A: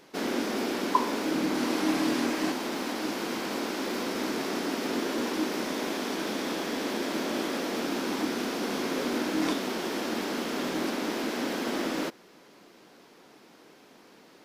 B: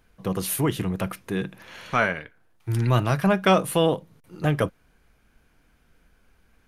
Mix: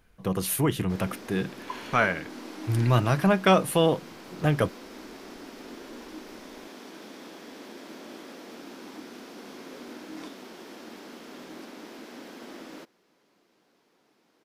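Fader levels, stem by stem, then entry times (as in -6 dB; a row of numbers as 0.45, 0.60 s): -13.0, -1.0 dB; 0.75, 0.00 s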